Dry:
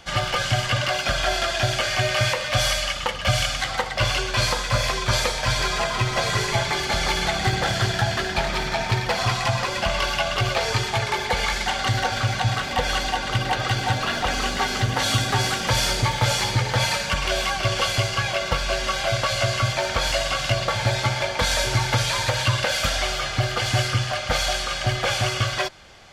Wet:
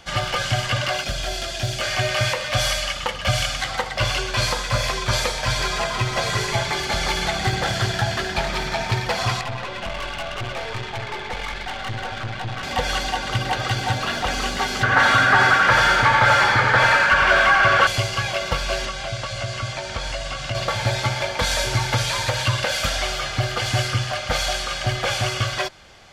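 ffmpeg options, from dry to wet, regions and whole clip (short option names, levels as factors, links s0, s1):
-filter_complex "[0:a]asettb=1/sr,asplit=3[s0][s1][s2];[s0]atrim=end=1.044[s3];[s1]atrim=start=1.04:end=1.81,asetpts=PTS-STARTPTS,afade=t=in:d=0.004:c=qsin,afade=t=out:st=0.766:d=0.004:c=qsin,volume=5.31,asoftclip=hard,volume=0.188,equalizer=f=1200:t=o:w=2.1:g=-10[s4];[s2]atrim=start=1.806[s5];[s3][s4]acrossfade=d=0.004:c1=hsin:c2=qsin[s6];[s6][s5]acrossfade=d=0.004:c1=qsin:c2=hsin,asettb=1/sr,asplit=3[s7][s8][s9];[s7]atrim=end=9.414[s10];[s8]atrim=start=9.41:end=12.63,asetpts=PTS-STARTPTS,afade=t=in:d=0.004:c=qsin,afade=t=out:st=3.216:d=0.004:c=qsin,lowpass=f=3700:w=0.5412,lowpass=f=3700:w=1.3066,aeval=exprs='(tanh(17.8*val(0)+0.6)-tanh(0.6))/17.8':c=same[s11];[s9]atrim=start=12.626[s12];[s10][s11]acrossfade=d=0.004:c1=hsin:c2=qsin[s13];[s13][s12]acrossfade=d=0.004:c1=qsin:c2=hsin,asettb=1/sr,asplit=3[s14][s15][s16];[s14]atrim=end=14.834[s17];[s15]atrim=start=14.83:end=17.87,asetpts=PTS-STARTPTS,afade=t=in:d=0.004:c=qsin,afade=t=out:st=3.036:d=0.004:c=qsin,equalizer=f=1500:w=1.5:g=13,aecho=1:1:87:0.531,atrim=end_sample=134064,asplit=2[s18][s19];[s19]highpass=f=720:p=1,volume=5.62,asoftclip=type=tanh:threshold=0.794[s20];[s18][s20]amix=inputs=2:normalize=0,lowpass=f=1100:p=1,volume=0.501[s21];[s16]atrim=start=17.866[s22];[s17][s21]acrossfade=d=0.004:c1=hsin:c2=qsin[s23];[s23][s22]acrossfade=d=0.004:c1=qsin:c2=hsin,asettb=1/sr,asplit=3[s24][s25][s26];[s24]atrim=end=18.854[s27];[s25]atrim=start=18.85:end=20.55,asetpts=PTS-STARTPTS,afade=t=in:d=0.004:c=qsin,afade=t=out:st=1.696:d=0.004:c=qsin,lowpass=f=9800:w=0.5412,lowpass=f=9800:w=1.3066,acrossover=split=220|2400[s28][s29][s30];[s28]acompressor=threshold=0.0447:ratio=4[s31];[s29]acompressor=threshold=0.0316:ratio=4[s32];[s30]acompressor=threshold=0.02:ratio=4[s33];[s31][s32][s33]amix=inputs=3:normalize=0[s34];[s26]atrim=start=20.546[s35];[s27][s34]acrossfade=d=0.004:c1=hsin:c2=qsin[s36];[s36][s35]acrossfade=d=0.004:c1=qsin:c2=hsin"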